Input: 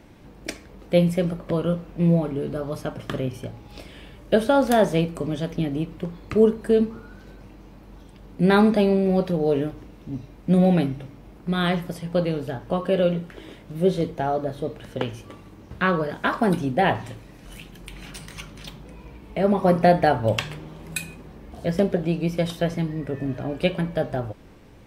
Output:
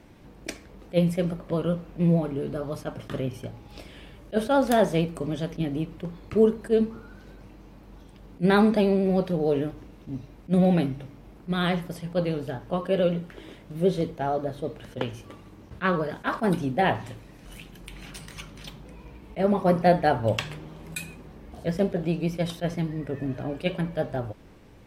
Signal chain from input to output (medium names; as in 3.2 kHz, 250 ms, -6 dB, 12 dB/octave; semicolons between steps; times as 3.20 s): vibrato 13 Hz 37 cents; attacks held to a fixed rise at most 420 dB/s; trim -2.5 dB